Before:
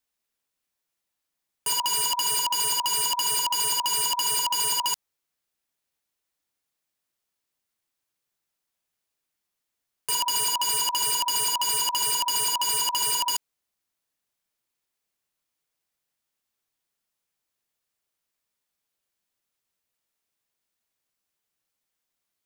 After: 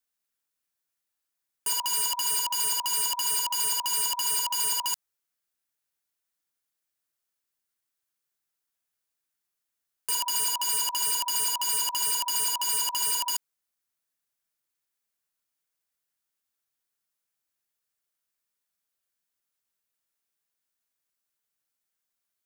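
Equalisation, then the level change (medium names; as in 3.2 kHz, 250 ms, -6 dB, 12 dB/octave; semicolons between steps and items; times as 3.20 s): peaking EQ 1.5 kHz +4.5 dB 0.65 oct; treble shelf 5.5 kHz +7 dB; -6.5 dB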